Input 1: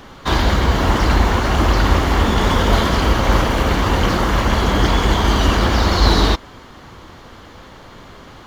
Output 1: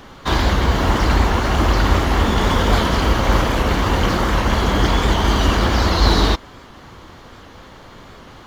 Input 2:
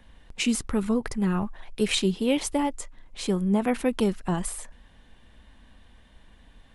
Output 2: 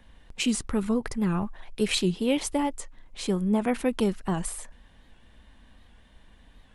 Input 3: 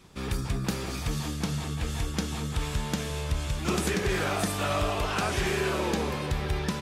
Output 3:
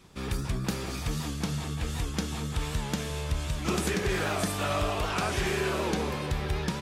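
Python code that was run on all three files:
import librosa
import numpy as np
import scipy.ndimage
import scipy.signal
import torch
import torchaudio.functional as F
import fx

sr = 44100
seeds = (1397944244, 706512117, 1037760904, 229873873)

y = fx.record_warp(x, sr, rpm=78.0, depth_cents=100.0)
y = y * librosa.db_to_amplitude(-1.0)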